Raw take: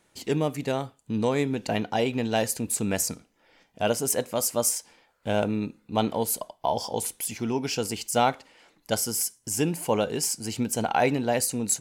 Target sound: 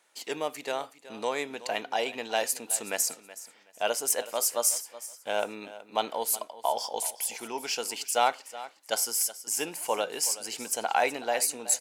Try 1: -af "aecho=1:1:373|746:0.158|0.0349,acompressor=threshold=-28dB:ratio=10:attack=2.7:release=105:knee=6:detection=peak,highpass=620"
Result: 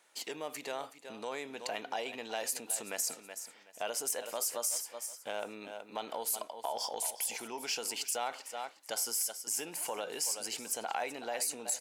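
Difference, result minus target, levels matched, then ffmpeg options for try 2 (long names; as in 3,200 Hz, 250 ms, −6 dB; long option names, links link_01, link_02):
downward compressor: peak gain reduction +13 dB
-af "highpass=620,aecho=1:1:373|746:0.158|0.0349"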